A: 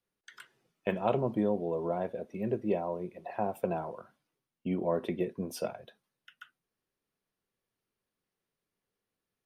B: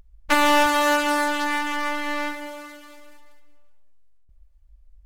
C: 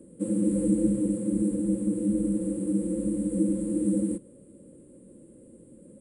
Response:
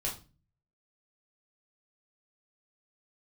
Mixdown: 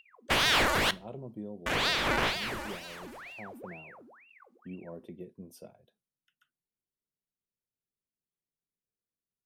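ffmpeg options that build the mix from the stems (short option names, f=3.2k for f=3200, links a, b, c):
-filter_complex "[0:a]equalizer=f=1.5k:w=0.36:g=-12.5,volume=-8.5dB[a];[1:a]bass=f=250:g=-4,treble=f=4k:g=1,dynaudnorm=f=160:g=13:m=8dB,aeval=exprs='val(0)*sin(2*PI*1500*n/s+1500*0.85/2.1*sin(2*PI*2.1*n/s))':c=same,volume=-5.5dB,asplit=3[b][c][d];[b]atrim=end=0.91,asetpts=PTS-STARTPTS,afade=t=out:st=0.906:d=0.004:c=hsin[e];[c]atrim=start=0.91:end=1.66,asetpts=PTS-STARTPTS,volume=0[f];[d]atrim=start=1.66,asetpts=PTS-STARTPTS,afade=t=in:d=0.004:c=hsin[g];[e][f][g]concat=n=3:v=0:a=1,asplit=2[h][i];[i]volume=-18.5dB[j];[3:a]atrim=start_sample=2205[k];[j][k]afir=irnorm=-1:irlink=0[l];[a][h][l]amix=inputs=3:normalize=0"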